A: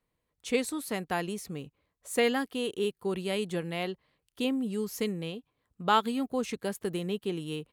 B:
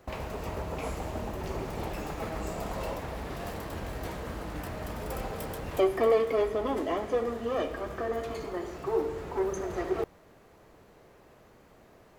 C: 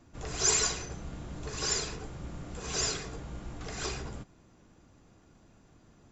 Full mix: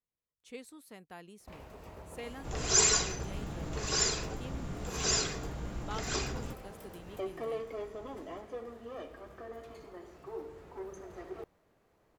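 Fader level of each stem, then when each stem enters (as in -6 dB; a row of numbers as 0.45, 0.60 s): -18.0, -13.5, +1.5 dB; 0.00, 1.40, 2.30 s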